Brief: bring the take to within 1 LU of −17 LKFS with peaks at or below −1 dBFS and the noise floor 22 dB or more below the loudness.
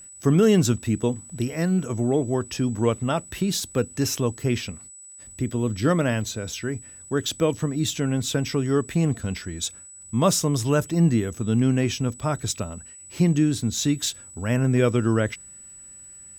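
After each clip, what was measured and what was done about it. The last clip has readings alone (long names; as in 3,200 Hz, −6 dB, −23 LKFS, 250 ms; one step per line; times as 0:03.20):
crackle rate 33 per second; interfering tone 7,900 Hz; level of the tone −42 dBFS; integrated loudness −24.0 LKFS; sample peak −7.0 dBFS; target loudness −17.0 LKFS
→ click removal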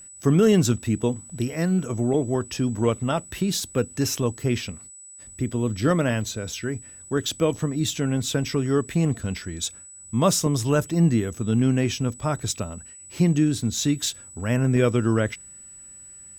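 crackle rate 1.0 per second; interfering tone 7,900 Hz; level of the tone −42 dBFS
→ notch filter 7,900 Hz, Q 30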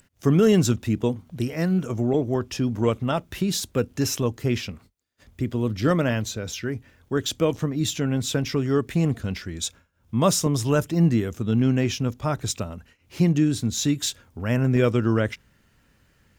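interfering tone none found; integrated loudness −24.0 LKFS; sample peak −7.0 dBFS; target loudness −17.0 LKFS
→ level +7 dB
brickwall limiter −1 dBFS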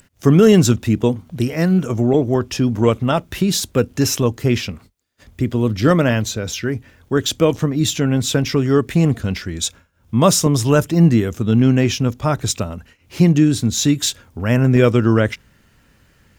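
integrated loudness −17.0 LKFS; sample peak −1.0 dBFS; background noise floor −56 dBFS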